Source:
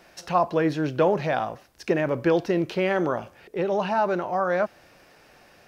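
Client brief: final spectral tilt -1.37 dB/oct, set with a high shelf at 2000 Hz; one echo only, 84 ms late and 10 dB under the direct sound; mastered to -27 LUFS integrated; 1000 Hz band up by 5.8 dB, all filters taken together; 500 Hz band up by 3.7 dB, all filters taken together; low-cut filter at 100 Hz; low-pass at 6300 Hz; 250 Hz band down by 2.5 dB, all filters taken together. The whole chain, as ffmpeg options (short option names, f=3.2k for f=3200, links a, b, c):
-af "highpass=100,lowpass=6.3k,equalizer=f=250:t=o:g=-7.5,equalizer=f=500:t=o:g=4.5,equalizer=f=1k:t=o:g=7,highshelf=f=2k:g=-3,aecho=1:1:84:0.316,volume=-6dB"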